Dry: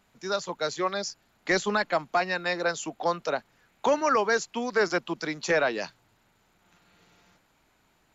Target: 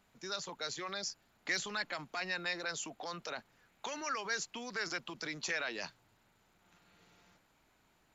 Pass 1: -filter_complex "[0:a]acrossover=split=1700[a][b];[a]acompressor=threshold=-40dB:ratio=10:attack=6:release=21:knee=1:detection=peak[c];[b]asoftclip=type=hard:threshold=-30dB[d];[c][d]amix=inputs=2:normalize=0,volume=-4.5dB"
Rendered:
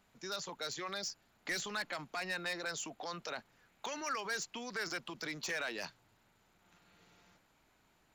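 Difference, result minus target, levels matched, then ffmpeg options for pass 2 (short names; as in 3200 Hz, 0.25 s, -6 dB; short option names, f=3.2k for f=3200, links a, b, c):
hard clip: distortion +32 dB
-filter_complex "[0:a]acrossover=split=1700[a][b];[a]acompressor=threshold=-40dB:ratio=10:attack=6:release=21:knee=1:detection=peak[c];[b]asoftclip=type=hard:threshold=-19.5dB[d];[c][d]amix=inputs=2:normalize=0,volume=-4.5dB"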